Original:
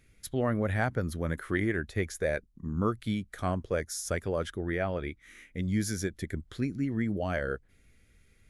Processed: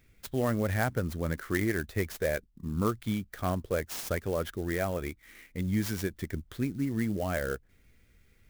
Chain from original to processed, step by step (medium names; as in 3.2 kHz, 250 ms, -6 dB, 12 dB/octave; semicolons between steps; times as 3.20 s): sampling jitter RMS 0.032 ms